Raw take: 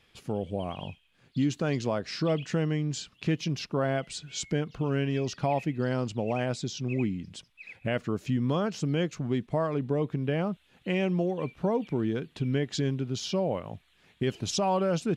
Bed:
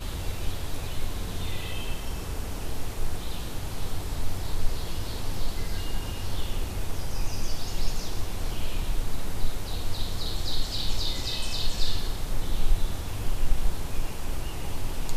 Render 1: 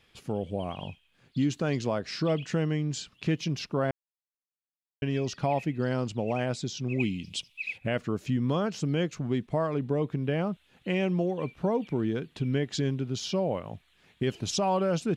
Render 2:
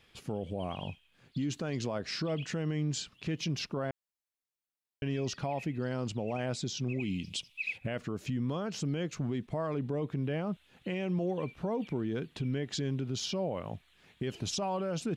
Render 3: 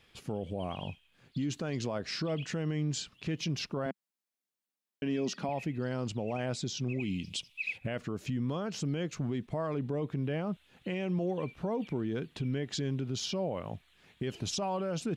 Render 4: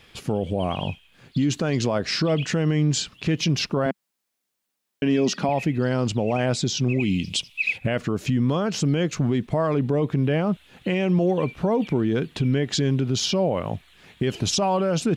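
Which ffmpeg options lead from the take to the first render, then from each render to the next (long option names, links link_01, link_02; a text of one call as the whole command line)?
ffmpeg -i in.wav -filter_complex "[0:a]asettb=1/sr,asplit=3[link_01][link_02][link_03];[link_01]atrim=end=7.004[link_04];[link_02]atrim=start=7:end=7.78,asetpts=PTS-STARTPTS,afade=type=in:duration=0.004:curve=qsin,afade=type=out:start_time=0.776:duration=0.004:curve=qsin,highshelf=frequency=2100:width_type=q:width=3:gain=7.5[link_05];[link_03]atrim=start=7.776[link_06];[link_04][link_05]acrossfade=duration=0.004:curve1=hsin:curve2=qsin[link_07];[link_07][link_06]acrossfade=duration=0.004:curve1=qsin:curve2=hsin,asplit=3[link_08][link_09][link_10];[link_08]atrim=end=3.91,asetpts=PTS-STARTPTS,afade=type=out:start_time=3.906:duration=0.004:curve=hsin[link_11];[link_09]atrim=start=3.91:end=5.02,asetpts=PTS-STARTPTS,volume=0[link_12];[link_10]atrim=start=5.02,asetpts=PTS-STARTPTS,afade=type=in:duration=0.004:curve=hsin[link_13];[link_11][link_12][link_13]concat=n=3:v=0:a=1" out.wav
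ffmpeg -i in.wav -af "alimiter=level_in=1.5dB:limit=-24dB:level=0:latency=1:release=53,volume=-1.5dB" out.wav
ffmpeg -i in.wav -filter_complex "[0:a]asettb=1/sr,asplit=3[link_01][link_02][link_03];[link_01]atrim=end=3.864[link_04];[link_02]atrim=start=3.86:end=5.49,asetpts=PTS-STARTPTS,afade=type=in:duration=0.004:curve=qsin,afade=type=out:start_time=1.626:duration=0.004:curve=qsin,lowshelf=frequency=140:width_type=q:width=3:gain=-12[link_05];[link_03]atrim=start=5.486[link_06];[link_04][link_05]acrossfade=duration=0.004:curve1=hsin:curve2=qsin[link_07];[link_07][link_06]acrossfade=duration=0.004:curve1=qsin:curve2=hsin" out.wav
ffmpeg -i in.wav -af "volume=11.5dB" out.wav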